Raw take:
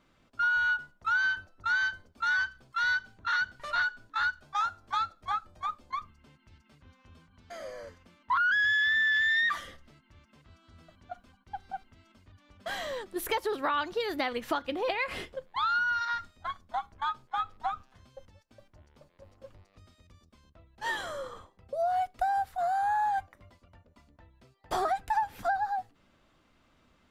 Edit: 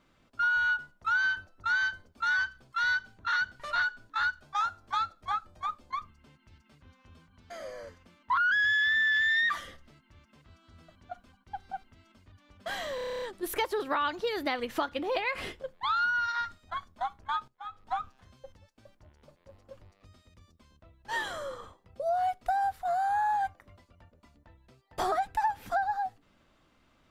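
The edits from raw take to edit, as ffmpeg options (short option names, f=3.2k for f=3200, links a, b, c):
-filter_complex "[0:a]asplit=11[a][b][c][d][e][f][g][h][i][j][k];[a]atrim=end=12.982[l];[b]atrim=start=12.948:end=12.982[m];[c]atrim=start=12.948:end=12.982[n];[d]atrim=start=12.948:end=12.982[o];[e]atrim=start=12.948:end=12.982[p];[f]atrim=start=12.948:end=12.982[q];[g]atrim=start=12.948:end=12.982[r];[h]atrim=start=12.948:end=12.982[s];[i]atrim=start=12.948:end=12.982[t];[j]atrim=start=12.948:end=17.21,asetpts=PTS-STARTPTS,afade=t=out:st=4.258:d=0.004:c=hsin:silence=0.16788[u];[k]atrim=start=17.21,asetpts=PTS-STARTPTS,afade=t=in:d=0.45:c=qua:silence=0.16788[v];[l][m]acrossfade=d=0.004:c1=hsin:c2=hsin[w];[w][n]acrossfade=d=0.004:c1=hsin:c2=hsin[x];[x][o]acrossfade=d=0.004:c1=hsin:c2=hsin[y];[y][p]acrossfade=d=0.004:c1=hsin:c2=hsin[z];[z][q]acrossfade=d=0.004:c1=hsin:c2=hsin[aa];[aa][r]acrossfade=d=0.004:c1=hsin:c2=hsin[ab];[ab][s]acrossfade=d=0.004:c1=hsin:c2=hsin[ac];[ac][t]acrossfade=d=0.004:c1=hsin:c2=hsin[ad];[u][v]concat=n=2:v=0:a=1[ae];[ad][ae]acrossfade=d=0.004:c1=hsin:c2=hsin"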